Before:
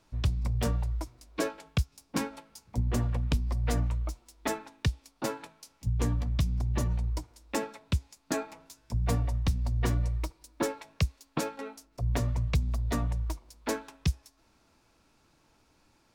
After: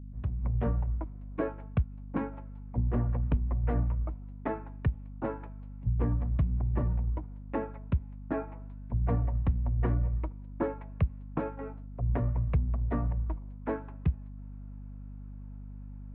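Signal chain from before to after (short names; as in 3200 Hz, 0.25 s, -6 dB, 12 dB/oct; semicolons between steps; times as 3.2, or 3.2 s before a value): opening faded in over 0.51 s; hum 50 Hz, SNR 12 dB; Gaussian blur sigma 4.8 samples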